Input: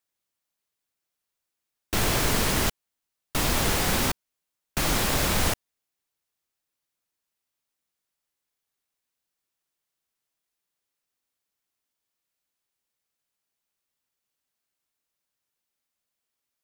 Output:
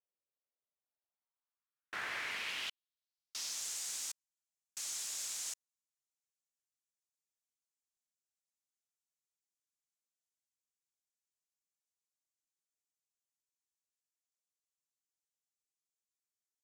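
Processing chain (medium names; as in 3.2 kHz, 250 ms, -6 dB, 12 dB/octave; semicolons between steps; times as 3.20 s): band-pass sweep 510 Hz -> 7 kHz, 0.62–3.66 s; trim -5.5 dB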